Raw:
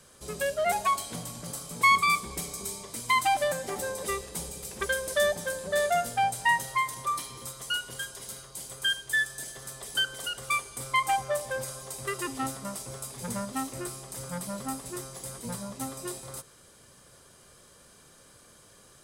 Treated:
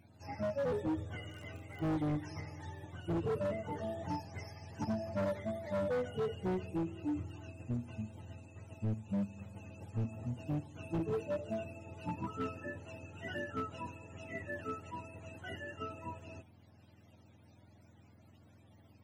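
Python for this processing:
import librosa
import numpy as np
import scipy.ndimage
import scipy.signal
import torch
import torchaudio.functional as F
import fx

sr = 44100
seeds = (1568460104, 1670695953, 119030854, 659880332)

y = fx.octave_mirror(x, sr, pivot_hz=590.0)
y = fx.dmg_crackle(y, sr, seeds[0], per_s=fx.line((1.23, 32.0), (1.96, 83.0)), level_db=-41.0, at=(1.23, 1.96), fade=0.02)
y = np.clip(y, -10.0 ** (-26.5 / 20.0), 10.0 ** (-26.5 / 20.0))
y = y * librosa.db_to_amplitude(-4.5)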